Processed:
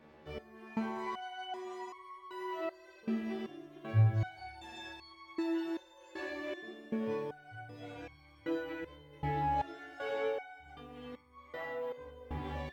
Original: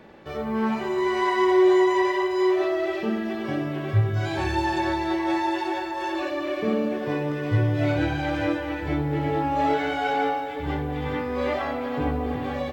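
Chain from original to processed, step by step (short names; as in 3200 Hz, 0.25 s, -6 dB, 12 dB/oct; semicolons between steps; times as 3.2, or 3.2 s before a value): stepped resonator 2.6 Hz 76–1100 Hz; gain -2 dB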